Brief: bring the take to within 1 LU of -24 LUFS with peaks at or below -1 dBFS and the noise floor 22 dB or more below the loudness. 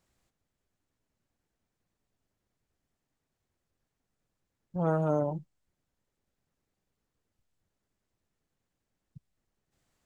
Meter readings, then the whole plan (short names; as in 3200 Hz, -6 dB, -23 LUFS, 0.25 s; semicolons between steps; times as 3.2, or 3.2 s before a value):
loudness -31.0 LUFS; peak -15.0 dBFS; loudness target -24.0 LUFS
-> gain +7 dB